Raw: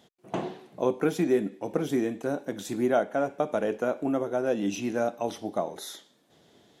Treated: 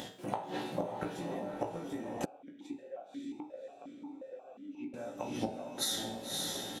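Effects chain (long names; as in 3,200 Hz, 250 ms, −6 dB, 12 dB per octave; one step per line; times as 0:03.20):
gate with flip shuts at −23 dBFS, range −29 dB
convolution reverb RT60 0.45 s, pre-delay 3 ms, DRR 0 dB
upward compression, threshold −48 dBFS
notch filter 1,200 Hz, Q 28
double-tracking delay 17 ms −4.5 dB
feedback delay with all-pass diffusion 560 ms, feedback 41%, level −7 dB
downward compressor 10 to 1, threshold −39 dBFS, peak gain reduction 10 dB
0:02.25–0:04.94: formant filter that steps through the vowels 5.6 Hz
level +8.5 dB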